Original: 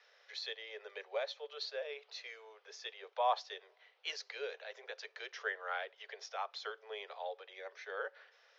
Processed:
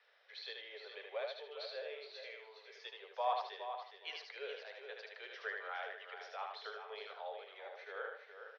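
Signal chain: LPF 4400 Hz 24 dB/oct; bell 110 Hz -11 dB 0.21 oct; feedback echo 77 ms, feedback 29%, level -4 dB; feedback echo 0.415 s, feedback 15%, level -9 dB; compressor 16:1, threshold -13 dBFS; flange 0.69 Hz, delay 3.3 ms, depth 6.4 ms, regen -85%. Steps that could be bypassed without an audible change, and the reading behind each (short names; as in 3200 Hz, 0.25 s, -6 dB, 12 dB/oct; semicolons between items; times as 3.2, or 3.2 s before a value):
bell 110 Hz: input band starts at 340 Hz; compressor, threshold -13 dBFS: input peak -18.5 dBFS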